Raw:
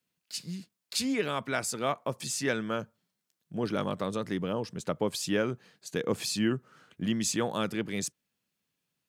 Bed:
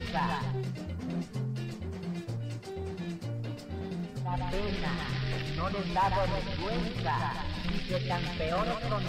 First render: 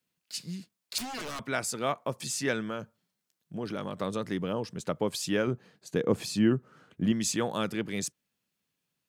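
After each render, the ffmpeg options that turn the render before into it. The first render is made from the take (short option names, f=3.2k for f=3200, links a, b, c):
-filter_complex "[0:a]asettb=1/sr,asplit=3[a][b][c];[a]atrim=end=0.984[d];[b]atrim=start=0.98:end=1.47,asetpts=PTS-STARTPTS,afade=t=in:d=0.004:c=qsin,afade=t=out:st=0.486:d=0.004:c=qsin,aeval=exprs='0.0251*(abs(mod(val(0)/0.0251+3,4)-2)-1)':c=same[e];[c]atrim=start=1.466[f];[d][e]acrossfade=d=0.004:c1=hsin:c2=qsin[g];[g][f]acrossfade=d=0.004:c1=qsin:c2=hsin,asettb=1/sr,asplit=3[h][i][j];[h]atrim=end=2.694[k];[i]atrim=start=2.69:end=4,asetpts=PTS-STARTPTS,afade=t=in:d=0.004:c=qsin,afade=t=out:st=1.306:d=0.004:c=qsin,acompressor=threshold=-33dB:ratio=2:attack=3.2:release=140:knee=1:detection=peak[l];[j]atrim=start=3.996[m];[k][l]acrossfade=d=0.004:c1=hsin:c2=qsin[n];[n][m]acrossfade=d=0.004:c1=qsin:c2=hsin,asettb=1/sr,asplit=3[o][p][q];[o]atrim=end=5.474[r];[p]atrim=start=5.47:end=7.12,asetpts=PTS-STARTPTS,afade=t=in:d=0.004:c=qsin,afade=t=out:st=1.646:d=0.004:c=qsin,tiltshelf=f=1.2k:g=4.5[s];[q]atrim=start=7.116[t];[r][s]acrossfade=d=0.004:c1=hsin:c2=qsin[u];[u][t]acrossfade=d=0.004:c1=qsin:c2=hsin"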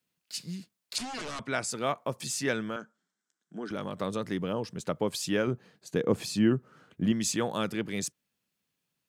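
-filter_complex "[0:a]asettb=1/sr,asplit=3[a][b][c];[a]atrim=end=0.964[d];[b]atrim=start=0.96:end=1.71,asetpts=PTS-STARTPTS,afade=t=in:d=0.004:c=qsin,afade=t=out:st=0.746:d=0.004:c=qsin,lowpass=f=9.6k:w=0.5412,lowpass=f=9.6k:w=1.3066[e];[c]atrim=start=1.706[f];[d][e]acrossfade=d=0.004:c1=hsin:c2=qsin[g];[g][f]acrossfade=d=0.004:c1=qsin:c2=hsin,asettb=1/sr,asplit=3[h][i][j];[h]atrim=end=2.764[k];[i]atrim=start=2.76:end=3.71,asetpts=PTS-STARTPTS,afade=t=in:d=0.004:c=qsin,afade=t=out:st=0.946:d=0.004:c=qsin,highpass=f=210:w=0.5412,highpass=f=210:w=1.3066,equalizer=f=540:t=q:w=4:g=-8,equalizer=f=920:t=q:w=4:g=-3,equalizer=f=1.5k:t=q:w=4:g=8,equalizer=f=2.6k:t=q:w=4:g=-10,equalizer=f=4.4k:t=q:w=4:g=-7,equalizer=f=7.7k:t=q:w=4:g=4,lowpass=f=8k:w=0.5412,lowpass=f=8k:w=1.3066[l];[j]atrim=start=3.706[m];[k][l]acrossfade=d=0.004:c1=hsin:c2=qsin[n];[n][m]acrossfade=d=0.004:c1=qsin:c2=hsin"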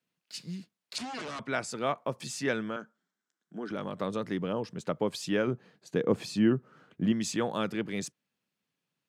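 -af "highpass=110,highshelf=f=6.3k:g=-11"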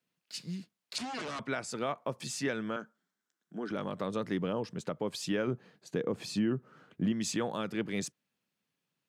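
-af "alimiter=limit=-21.5dB:level=0:latency=1:release=191"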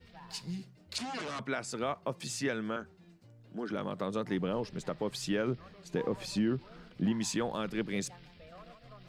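-filter_complex "[1:a]volume=-21.5dB[a];[0:a][a]amix=inputs=2:normalize=0"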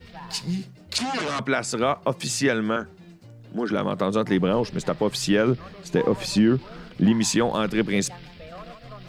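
-af "volume=11.5dB"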